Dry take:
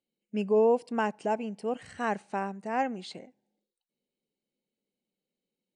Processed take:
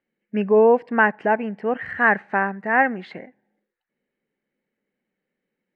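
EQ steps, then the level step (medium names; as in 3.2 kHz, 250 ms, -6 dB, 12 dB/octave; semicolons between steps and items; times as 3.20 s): resonant low-pass 1.8 kHz, resonance Q 5.1; +7.5 dB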